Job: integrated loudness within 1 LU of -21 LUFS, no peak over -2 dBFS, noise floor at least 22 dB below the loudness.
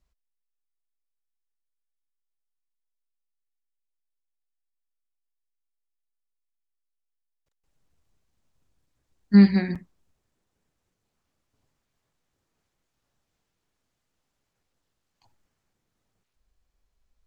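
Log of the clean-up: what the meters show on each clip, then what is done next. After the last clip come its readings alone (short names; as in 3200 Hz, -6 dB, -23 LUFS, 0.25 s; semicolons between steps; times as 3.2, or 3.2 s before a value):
dropouts 1; longest dropout 6.1 ms; loudness -18.5 LUFS; peak -5.0 dBFS; loudness target -21.0 LUFS
-> interpolate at 9.75, 6.1 ms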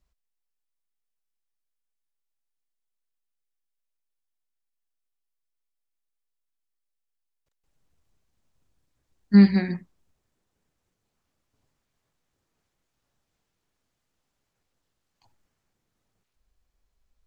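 dropouts 0; loudness -18.5 LUFS; peak -5.0 dBFS; loudness target -21.0 LUFS
-> gain -2.5 dB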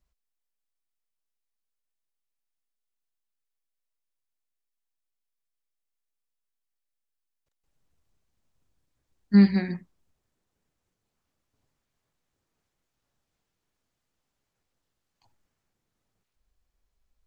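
loudness -21.0 LUFS; peak -7.5 dBFS; noise floor -83 dBFS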